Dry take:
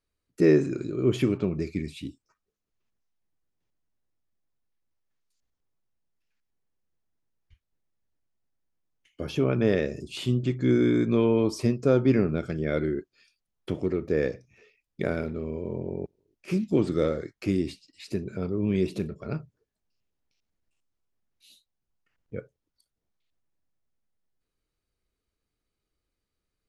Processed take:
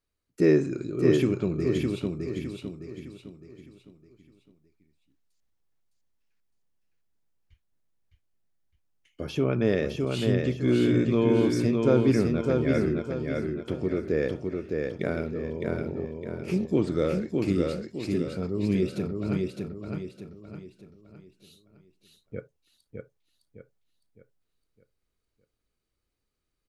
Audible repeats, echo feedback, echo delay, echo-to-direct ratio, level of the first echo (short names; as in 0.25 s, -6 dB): 4, 40%, 0.61 s, -2.5 dB, -3.5 dB